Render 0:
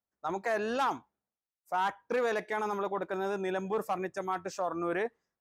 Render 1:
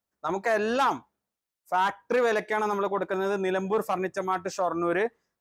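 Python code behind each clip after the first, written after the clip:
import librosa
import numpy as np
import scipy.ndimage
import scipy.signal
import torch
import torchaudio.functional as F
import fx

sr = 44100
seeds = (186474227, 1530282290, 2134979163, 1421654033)

y = fx.notch(x, sr, hz=780.0, q=23.0)
y = y * 10.0 ** (6.0 / 20.0)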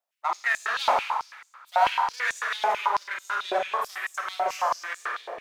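y = np.where(x < 0.0, 10.0 ** (-12.0 / 20.0) * x, x)
y = fx.rev_schroeder(y, sr, rt60_s=1.5, comb_ms=31, drr_db=-0.5)
y = fx.filter_held_highpass(y, sr, hz=9.1, low_hz=670.0, high_hz=7200.0)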